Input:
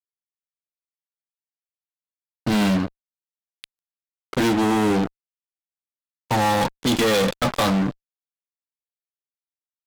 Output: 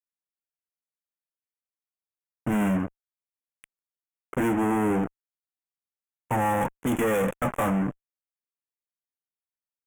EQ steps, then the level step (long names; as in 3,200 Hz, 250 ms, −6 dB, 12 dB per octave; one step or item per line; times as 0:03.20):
Butterworth band-reject 4,400 Hz, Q 0.78
−4.5 dB